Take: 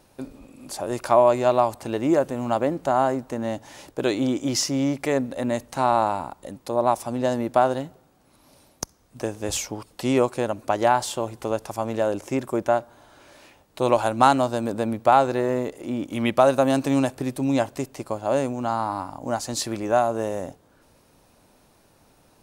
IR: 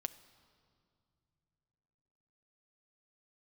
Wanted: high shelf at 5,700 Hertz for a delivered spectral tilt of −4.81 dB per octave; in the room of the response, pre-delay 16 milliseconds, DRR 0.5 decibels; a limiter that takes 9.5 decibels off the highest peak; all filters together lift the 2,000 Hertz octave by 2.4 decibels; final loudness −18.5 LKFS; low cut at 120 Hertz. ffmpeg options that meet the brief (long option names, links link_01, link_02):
-filter_complex "[0:a]highpass=120,equalizer=frequency=2000:width_type=o:gain=4,highshelf=frequency=5700:gain=-5.5,alimiter=limit=-11.5dB:level=0:latency=1,asplit=2[link_01][link_02];[1:a]atrim=start_sample=2205,adelay=16[link_03];[link_02][link_03]afir=irnorm=-1:irlink=0,volume=1dB[link_04];[link_01][link_04]amix=inputs=2:normalize=0,volume=4.5dB"